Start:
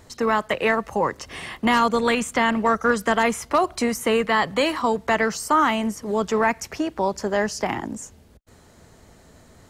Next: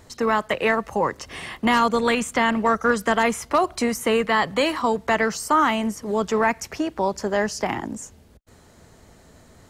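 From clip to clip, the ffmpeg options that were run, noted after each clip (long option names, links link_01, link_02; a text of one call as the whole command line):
ffmpeg -i in.wav -af anull out.wav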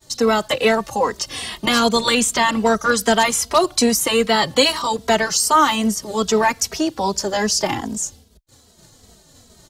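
ffmpeg -i in.wav -filter_complex "[0:a]agate=range=-33dB:threshold=-45dB:ratio=3:detection=peak,highshelf=frequency=2900:width_type=q:width=1.5:gain=8.5,asplit=2[link_01][link_02];[link_02]adelay=2.8,afreqshift=-2.5[link_03];[link_01][link_03]amix=inputs=2:normalize=1,volume=6.5dB" out.wav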